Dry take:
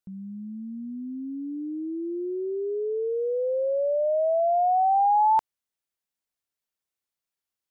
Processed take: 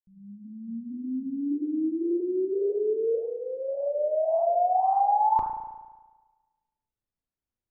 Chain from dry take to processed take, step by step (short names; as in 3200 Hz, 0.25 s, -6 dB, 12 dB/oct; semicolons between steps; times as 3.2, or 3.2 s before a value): opening faded in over 1.63 s; 3.15–4.29 HPF 1100 Hz -> 450 Hz 12 dB/oct; tilt -4.5 dB/oct; flange 1.8 Hz, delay 3.1 ms, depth 8.9 ms, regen -81%; spring tank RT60 1.3 s, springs 35 ms, chirp 55 ms, DRR 6 dB